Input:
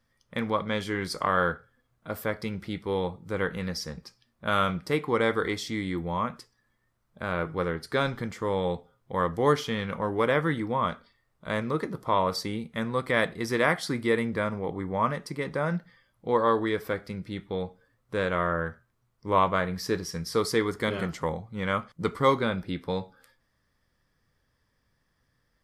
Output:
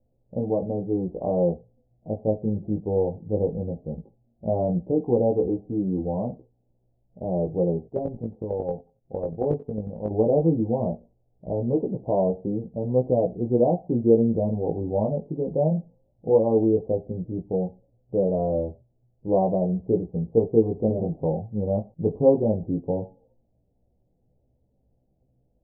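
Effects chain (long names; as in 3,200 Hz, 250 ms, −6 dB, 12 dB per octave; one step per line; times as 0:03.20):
Butterworth low-pass 780 Hz 72 dB per octave
0:07.87–0:10.11: square-wave tremolo 11 Hz, depth 60%, duty 10%
chorus effect 0.16 Hz, delay 15.5 ms, depth 3.6 ms
level +9 dB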